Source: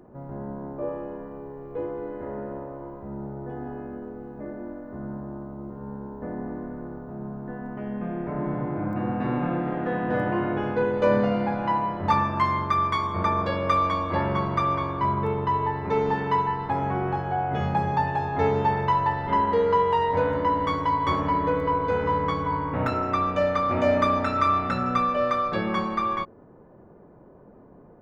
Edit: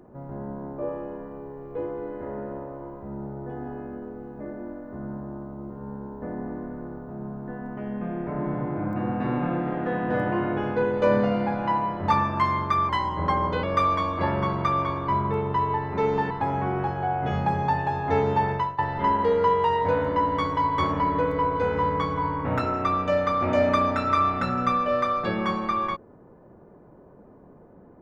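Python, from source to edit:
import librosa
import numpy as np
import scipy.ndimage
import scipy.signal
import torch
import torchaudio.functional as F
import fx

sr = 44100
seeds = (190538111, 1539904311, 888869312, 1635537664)

y = fx.edit(x, sr, fx.speed_span(start_s=12.89, length_s=0.67, speed=0.9),
    fx.cut(start_s=16.23, length_s=0.36),
    fx.fade_out_to(start_s=18.8, length_s=0.27, floor_db=-20.0), tone=tone)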